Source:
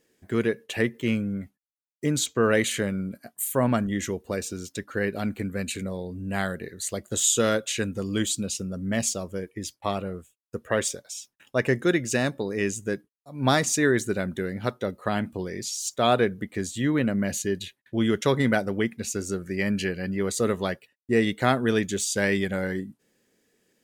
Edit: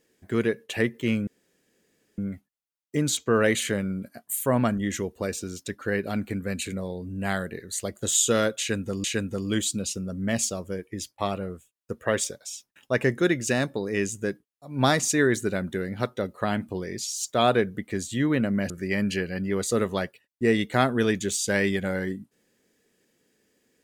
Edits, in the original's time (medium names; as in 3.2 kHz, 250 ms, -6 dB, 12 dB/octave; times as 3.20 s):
1.27 s: insert room tone 0.91 s
7.68–8.13 s: loop, 2 plays
17.34–19.38 s: delete